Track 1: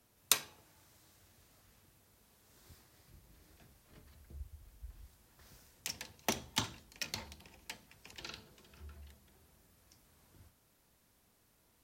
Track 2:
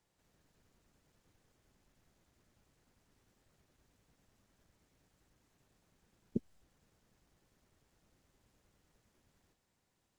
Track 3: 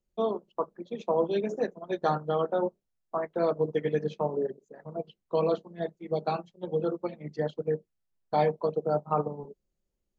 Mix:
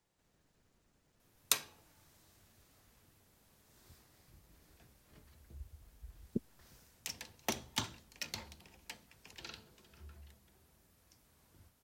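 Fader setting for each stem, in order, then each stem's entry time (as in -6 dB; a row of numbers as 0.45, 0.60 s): -2.0 dB, -1.0 dB, off; 1.20 s, 0.00 s, off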